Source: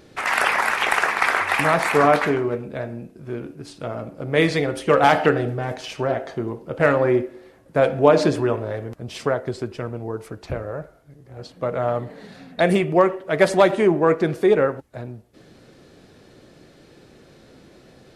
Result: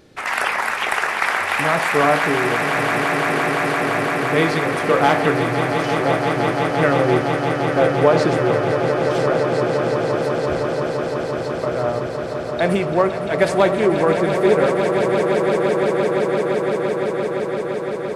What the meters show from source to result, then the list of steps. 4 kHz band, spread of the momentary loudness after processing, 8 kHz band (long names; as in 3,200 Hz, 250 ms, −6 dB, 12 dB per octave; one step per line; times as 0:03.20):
+3.5 dB, 7 LU, +3.0 dB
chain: echo that builds up and dies away 171 ms, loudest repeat 8, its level −9.5 dB
level −1 dB